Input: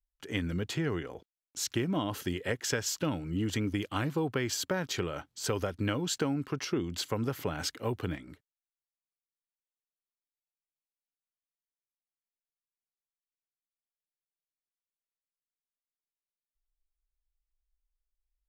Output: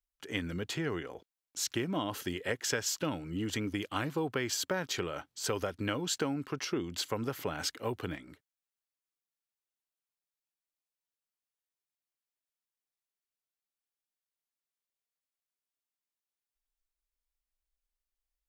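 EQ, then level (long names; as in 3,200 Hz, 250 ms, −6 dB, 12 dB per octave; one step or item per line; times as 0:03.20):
low-shelf EQ 220 Hz −7.5 dB
0.0 dB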